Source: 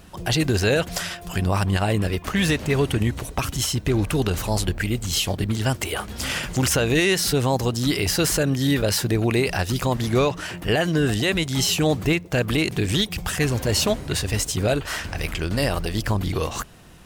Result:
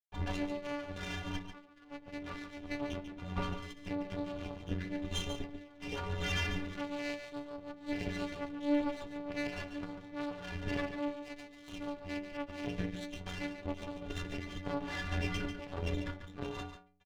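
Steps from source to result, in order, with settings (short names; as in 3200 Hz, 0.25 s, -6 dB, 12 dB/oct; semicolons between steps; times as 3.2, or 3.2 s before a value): tracing distortion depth 0.1 ms; requantised 6-bit, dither none; compressor 3:1, threshold -27 dBFS, peak gain reduction 9 dB; monotone LPC vocoder at 8 kHz 290 Hz; high shelf 3100 Hz +10.5 dB; metallic resonator 86 Hz, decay 0.79 s, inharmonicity 0.03; tube stage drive 36 dB, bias 0.65; tilt -2 dB/oct; echo 0.143 s -9 dB; running maximum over 3 samples; gain +10 dB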